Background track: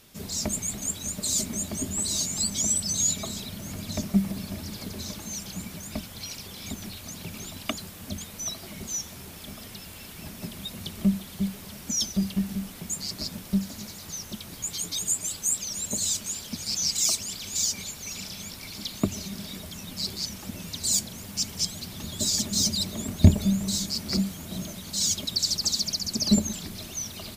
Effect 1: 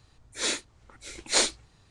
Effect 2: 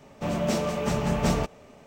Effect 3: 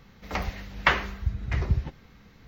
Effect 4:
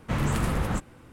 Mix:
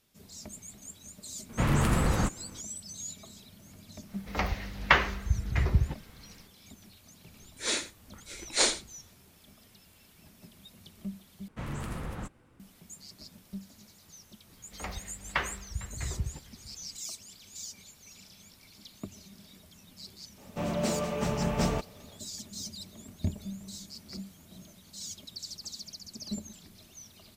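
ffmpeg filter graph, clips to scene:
ffmpeg -i bed.wav -i cue0.wav -i cue1.wav -i cue2.wav -i cue3.wav -filter_complex "[4:a]asplit=2[link_01][link_02];[3:a]asplit=2[link_03][link_04];[0:a]volume=-16dB[link_05];[link_01]acontrast=30[link_06];[1:a]aecho=1:1:88:0.2[link_07];[link_04]aecho=1:1:453:0.0891[link_08];[link_05]asplit=2[link_09][link_10];[link_09]atrim=end=11.484[link_11];[link_02]atrim=end=1.12,asetpts=PTS-STARTPTS,volume=-11dB[link_12];[link_10]atrim=start=12.596[link_13];[link_06]atrim=end=1.12,asetpts=PTS-STARTPTS,volume=-4.5dB,afade=type=in:duration=0.004:curve=hsin,afade=type=out:start_time=1.116:duration=0.004:curve=hsin,adelay=1490[link_14];[link_03]atrim=end=2.47,asetpts=PTS-STARTPTS,afade=type=in:duration=0.1,afade=type=out:start_time=2.37:duration=0.1,adelay=4040[link_15];[link_07]atrim=end=1.9,asetpts=PTS-STARTPTS,volume=-2dB,afade=type=in:duration=0.004:curve=hsin,afade=type=out:start_time=1.896:duration=0.004:curve=hsin,adelay=7240[link_16];[link_08]atrim=end=2.47,asetpts=PTS-STARTPTS,volume=-9dB,afade=type=in:duration=0.004:curve=hsin,afade=type=out:start_time=2.466:duration=0.004:curve=hsin,adelay=14490[link_17];[2:a]atrim=end=1.86,asetpts=PTS-STARTPTS,volume=-4dB,afade=type=in:duration=0.05,afade=type=out:start_time=1.81:duration=0.05,adelay=20350[link_18];[link_11][link_12]acrossfade=duration=0.004:curve1=hsin:curve2=hsin[link_19];[link_19][link_13]acrossfade=duration=0.004:curve1=hsin:curve2=hsin[link_20];[link_20][link_14][link_15][link_16][link_17][link_18]amix=inputs=6:normalize=0" out.wav

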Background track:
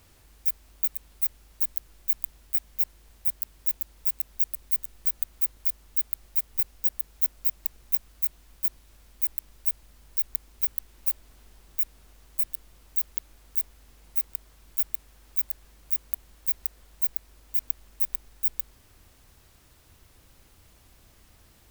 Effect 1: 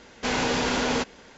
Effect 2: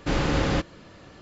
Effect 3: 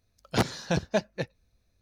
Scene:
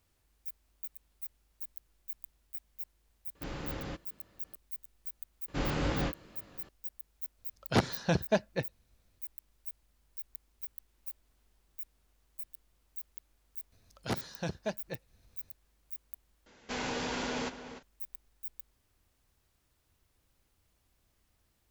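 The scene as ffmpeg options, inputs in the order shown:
ffmpeg -i bed.wav -i cue0.wav -i cue1.wav -i cue2.wav -filter_complex "[2:a]asplit=2[link_01][link_02];[3:a]asplit=2[link_03][link_04];[0:a]volume=-16.5dB[link_05];[link_02]flanger=delay=19:depth=7.8:speed=2.1[link_06];[link_03]highshelf=frequency=8500:gain=-10.5[link_07];[link_04]acompressor=mode=upward:threshold=-40dB:ratio=2.5:attack=3.2:release=140:knee=2.83:detection=peak[link_08];[1:a]asplit=2[link_09][link_10];[link_10]adelay=297.4,volume=-11dB,highshelf=frequency=4000:gain=-6.69[link_11];[link_09][link_11]amix=inputs=2:normalize=0[link_12];[link_05]asplit=2[link_13][link_14];[link_13]atrim=end=16.464[link_15];[link_12]atrim=end=1.37,asetpts=PTS-STARTPTS,volume=-10.5dB[link_16];[link_14]atrim=start=17.826[link_17];[link_01]atrim=end=1.21,asetpts=PTS-STARTPTS,volume=-16.5dB,afade=type=in:duration=0.004:curve=hsin,afade=type=out:start_time=1.206:duration=0.004:curve=hsin,adelay=3350[link_18];[link_06]atrim=end=1.21,asetpts=PTS-STARTPTS,volume=-5.5dB,afade=type=in:duration=0.004:curve=hsin,afade=type=out:start_time=1.206:duration=0.004:curve=hsin,adelay=5480[link_19];[link_07]atrim=end=1.81,asetpts=PTS-STARTPTS,volume=-1.5dB,afade=type=in:duration=0.004:curve=hsin,afade=type=out:start_time=1.806:duration=0.004:curve=hsin,adelay=325458S[link_20];[link_08]atrim=end=1.81,asetpts=PTS-STARTPTS,volume=-9.5dB,afade=type=in:duration=0.004:curve=hsin,afade=type=out:start_time=1.806:duration=0.004:curve=hsin,adelay=13720[link_21];[link_15][link_16]acrossfade=duration=0.004:curve1=hsin:curve2=hsin[link_22];[link_22][link_17]acrossfade=duration=0.004:curve1=hsin:curve2=hsin[link_23];[link_23][link_18][link_19][link_20][link_21]amix=inputs=5:normalize=0" out.wav

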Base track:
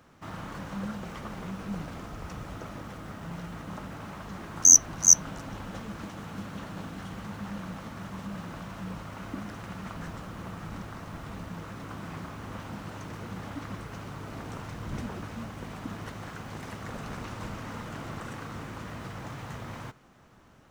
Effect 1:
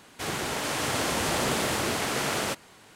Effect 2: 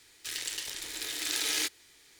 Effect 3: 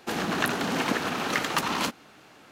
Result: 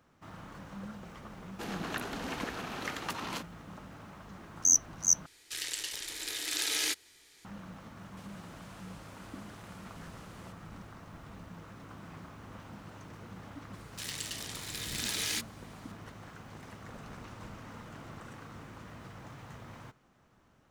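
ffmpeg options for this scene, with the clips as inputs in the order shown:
ffmpeg -i bed.wav -i cue0.wav -i cue1.wav -i cue2.wav -filter_complex "[2:a]asplit=2[link_01][link_02];[0:a]volume=-8.5dB[link_03];[link_01]aresample=32000,aresample=44100[link_04];[1:a]acompressor=threshold=-42dB:ratio=4:attack=4.4:release=46:knee=1:detection=peak[link_05];[link_03]asplit=2[link_06][link_07];[link_06]atrim=end=5.264[link_08];[link_04]atrim=end=2.19,asetpts=PTS-STARTPTS,volume=-1dB[link_09];[link_07]atrim=start=7.446[link_10];[3:a]atrim=end=2.51,asetpts=PTS-STARTPTS,volume=-11dB,afade=type=in:duration=0.004:curve=hsin,afade=type=out:start_time=2.506:duration=0.004:curve=hsin,adelay=1520[link_11];[link_05]atrim=end=2.95,asetpts=PTS-STARTPTS,volume=-15.5dB,afade=type=in:duration=0.004:curve=hsin,afade=type=out:start_time=2.946:duration=0.004:curve=hsin,adelay=7980[link_12];[link_02]atrim=end=2.19,asetpts=PTS-STARTPTS,volume=-3.5dB,afade=type=in:duration=0.004:curve=hsin,afade=type=out:start_time=2.186:duration=0.004:curve=hsin,adelay=13730[link_13];[link_08][link_09]acrossfade=duration=0.004:curve1=hsin:curve2=hsin[link_14];[link_14][link_10]acrossfade=duration=0.004:curve1=hsin:curve2=hsin[link_15];[link_15][link_11][link_12][link_13]amix=inputs=4:normalize=0" out.wav

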